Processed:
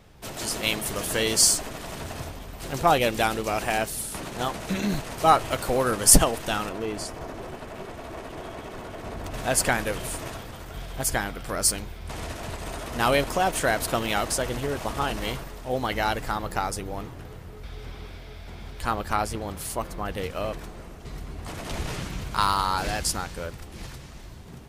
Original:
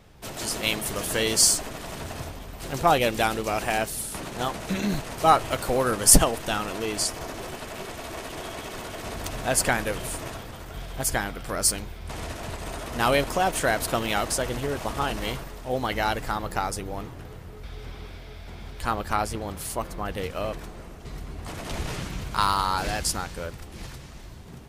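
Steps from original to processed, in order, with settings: 6.69–9.34 s: treble shelf 2.3 kHz -11.5 dB

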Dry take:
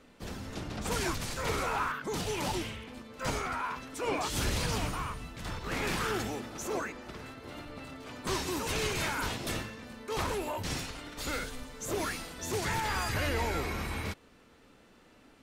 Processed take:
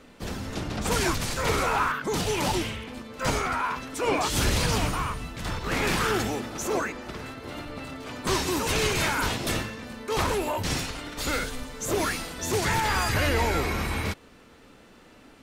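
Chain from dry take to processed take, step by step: trim +7 dB

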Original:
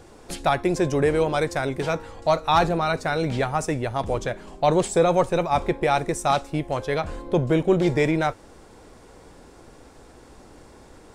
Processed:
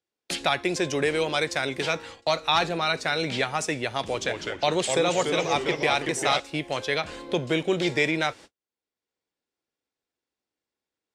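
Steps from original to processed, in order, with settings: frequency weighting D; gate -39 dBFS, range -50 dB; 4.04–6.40 s: ever faster or slower copies 177 ms, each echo -2 st, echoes 3, each echo -6 dB; three bands compressed up and down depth 40%; trim -4.5 dB

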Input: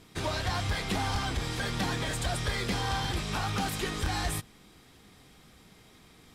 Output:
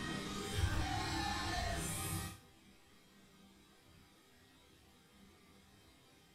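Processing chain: Paulstretch 4.5×, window 0.05 s, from 3.90 s; chord resonator C2 major, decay 0.37 s; trim +3.5 dB

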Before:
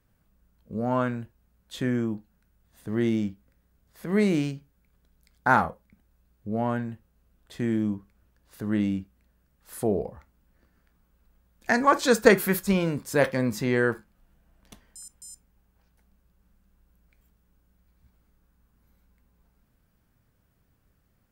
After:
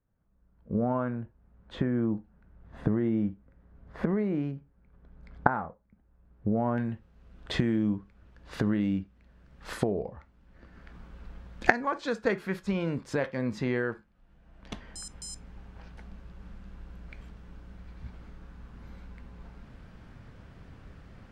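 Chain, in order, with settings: recorder AGC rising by 23 dB/s; low-pass 1.4 kHz 12 dB/octave, from 6.78 s 3.7 kHz; trim -11 dB

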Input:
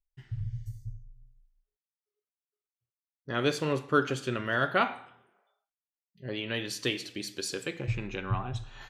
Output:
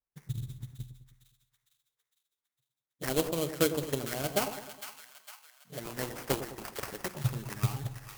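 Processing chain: touch-sensitive flanger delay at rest 8.5 ms, full sweep at -27.5 dBFS; transient shaper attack +8 dB, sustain +2 dB; high-pass 47 Hz; sample-rate reducer 3.4 kHz, jitter 20%; treble shelf 7 kHz +11.5 dB; two-band feedback delay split 920 Hz, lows 113 ms, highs 496 ms, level -10.5 dB; speed mistake 44.1 kHz file played as 48 kHz; trim -5 dB

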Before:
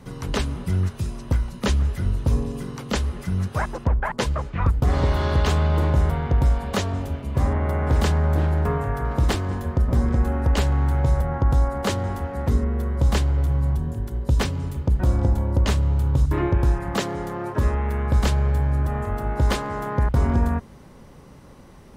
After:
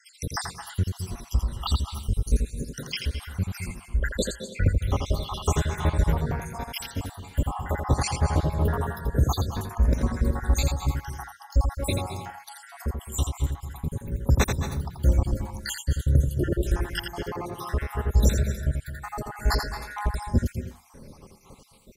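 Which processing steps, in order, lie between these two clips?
random holes in the spectrogram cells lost 77%; treble shelf 4.1 kHz +10.5 dB; delay 84 ms -6 dB; on a send at -10 dB: reverberation RT60 0.25 s, pre-delay 208 ms

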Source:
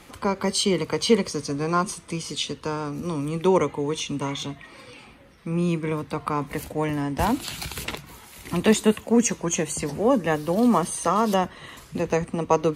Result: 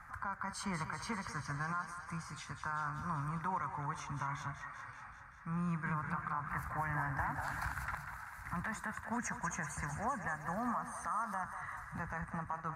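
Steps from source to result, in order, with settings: FFT filter 120 Hz 0 dB, 430 Hz -28 dB, 740 Hz -3 dB, 1.6 kHz +10 dB, 3 kHz -26 dB, 5.5 kHz -15 dB; compression, threshold -27 dBFS, peak gain reduction 12.5 dB; peak limiter -24 dBFS, peak gain reduction 10.5 dB; thinning echo 193 ms, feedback 69%, high-pass 410 Hz, level -9 dB; 5.66–7.74 s: modulated delay 198 ms, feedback 62%, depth 213 cents, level -7.5 dB; trim -4 dB

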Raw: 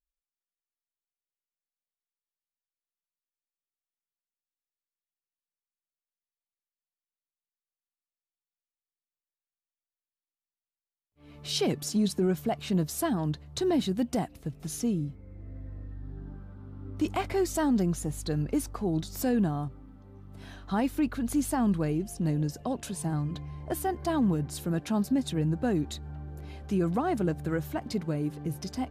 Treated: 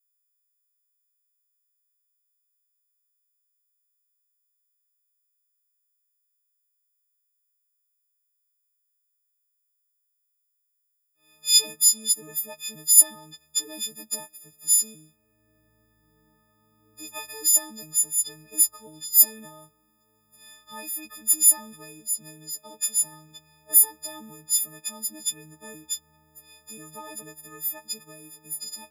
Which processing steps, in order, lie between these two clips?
partials quantised in pitch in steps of 6 st; RIAA curve recording; upward expansion 1.5:1, over -23 dBFS; trim -4 dB

